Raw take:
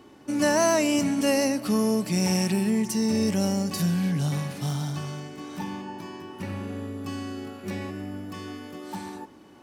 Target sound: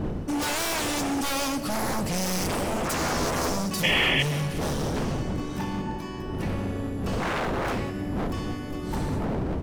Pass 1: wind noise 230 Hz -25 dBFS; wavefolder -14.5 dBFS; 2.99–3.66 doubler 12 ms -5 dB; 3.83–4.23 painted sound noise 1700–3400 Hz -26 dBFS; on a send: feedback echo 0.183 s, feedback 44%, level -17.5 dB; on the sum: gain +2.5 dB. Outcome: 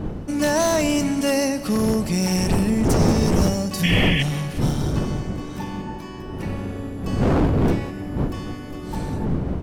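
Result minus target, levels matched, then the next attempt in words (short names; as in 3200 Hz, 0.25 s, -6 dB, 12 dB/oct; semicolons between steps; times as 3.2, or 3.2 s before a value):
wavefolder: distortion -16 dB
wind noise 230 Hz -25 dBFS; wavefolder -25 dBFS; 2.99–3.66 doubler 12 ms -5 dB; 3.83–4.23 painted sound noise 1700–3400 Hz -26 dBFS; on a send: feedback echo 0.183 s, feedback 44%, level -17.5 dB; on the sum: gain +2.5 dB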